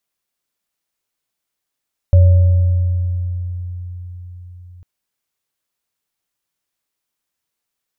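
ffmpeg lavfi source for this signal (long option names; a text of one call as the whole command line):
ffmpeg -f lavfi -i "aevalsrc='0.596*pow(10,-3*t/4.92)*sin(2*PI*89.1*t)+0.0944*pow(10,-3*t/1.98)*sin(2*PI*563*t)':duration=2.7:sample_rate=44100" out.wav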